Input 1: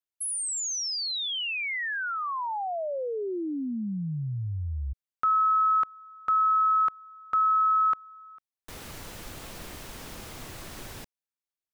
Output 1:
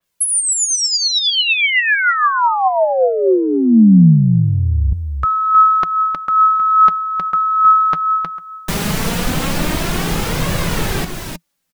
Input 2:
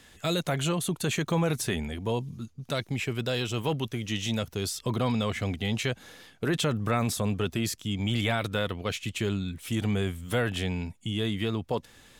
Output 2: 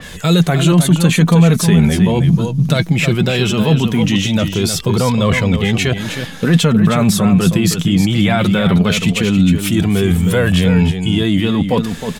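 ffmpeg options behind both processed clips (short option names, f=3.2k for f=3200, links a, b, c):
-af "areverse,acompressor=threshold=-36dB:ratio=6:attack=8.2:release=45:knee=1:detection=rms,areverse,aecho=1:1:314:0.398,flanger=delay=1.7:depth=4.9:regen=45:speed=0.19:shape=triangular,equalizer=f=170:t=o:w=0.5:g=13,alimiter=level_in=26.5dB:limit=-1dB:release=50:level=0:latency=1,adynamicequalizer=threshold=0.0398:dfrequency=3900:dqfactor=0.7:tfrequency=3900:tqfactor=0.7:attack=5:release=100:ratio=0.375:range=2:mode=cutabove:tftype=highshelf,volume=-1dB"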